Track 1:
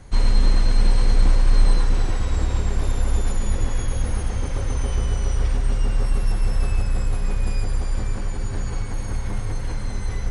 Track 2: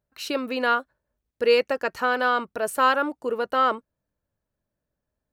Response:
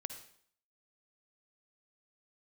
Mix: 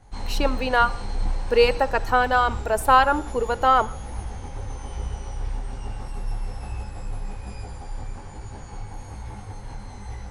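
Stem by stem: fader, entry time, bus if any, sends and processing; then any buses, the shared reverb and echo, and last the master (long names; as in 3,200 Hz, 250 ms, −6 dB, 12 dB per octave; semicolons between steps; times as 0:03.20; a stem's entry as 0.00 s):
−5.5 dB, 0.00 s, no send, micro pitch shift up and down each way 41 cents
−0.5 dB, 0.10 s, send −7.5 dB, reverb reduction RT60 0.85 s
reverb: on, RT60 0.60 s, pre-delay 47 ms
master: parametric band 830 Hz +11.5 dB 0.34 octaves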